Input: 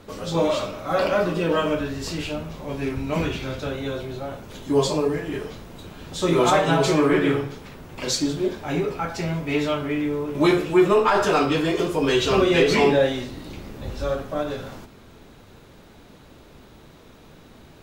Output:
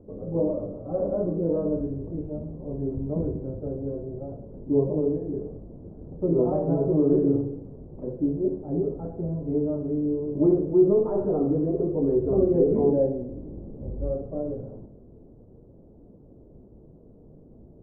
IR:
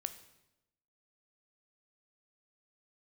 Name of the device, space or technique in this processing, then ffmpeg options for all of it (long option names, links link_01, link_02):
next room: -filter_complex "[0:a]lowpass=frequency=550:width=0.5412,lowpass=frequency=550:width=1.3066[link_01];[1:a]atrim=start_sample=2205[link_02];[link_01][link_02]afir=irnorm=-1:irlink=0"